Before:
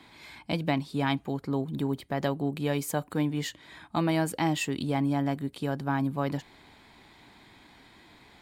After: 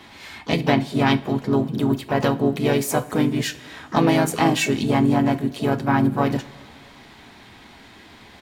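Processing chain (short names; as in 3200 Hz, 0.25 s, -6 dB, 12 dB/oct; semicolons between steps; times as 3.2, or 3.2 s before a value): harmoniser -3 st -5 dB, +5 st -13 dB, +7 st -13 dB; two-slope reverb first 0.28 s, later 2.3 s, from -18 dB, DRR 9 dB; gain +7 dB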